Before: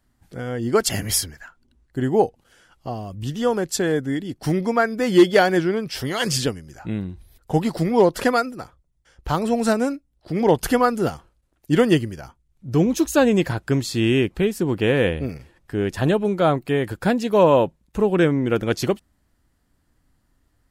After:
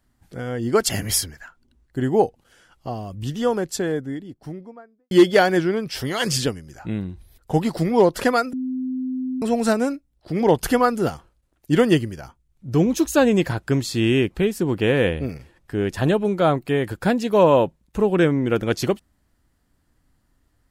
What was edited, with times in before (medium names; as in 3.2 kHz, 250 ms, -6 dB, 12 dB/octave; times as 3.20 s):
3.28–5.11 s: studio fade out
8.53–9.42 s: bleep 257 Hz -23 dBFS